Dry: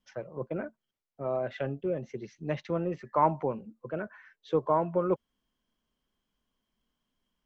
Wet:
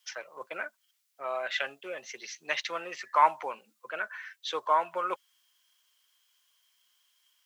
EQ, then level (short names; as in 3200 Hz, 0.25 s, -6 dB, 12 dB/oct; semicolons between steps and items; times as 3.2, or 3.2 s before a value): HPF 1300 Hz 12 dB/oct; high shelf 2400 Hz +11.5 dB; +8.5 dB